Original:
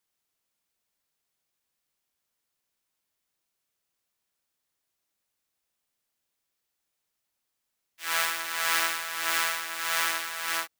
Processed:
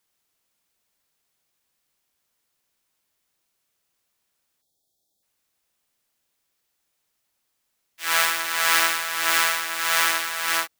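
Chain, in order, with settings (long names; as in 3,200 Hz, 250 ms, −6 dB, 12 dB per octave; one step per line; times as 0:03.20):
time-frequency box erased 0:04.62–0:05.23, 880–3,200 Hz
level +6.5 dB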